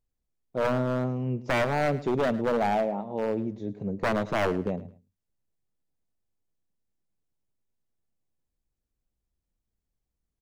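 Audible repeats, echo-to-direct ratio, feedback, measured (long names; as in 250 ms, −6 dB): 2, −17.0 dB, 23%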